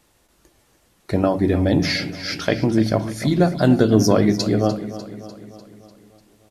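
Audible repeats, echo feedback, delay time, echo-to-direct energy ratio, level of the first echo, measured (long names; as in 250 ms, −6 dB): 5, 57%, 298 ms, −12.5 dB, −14.0 dB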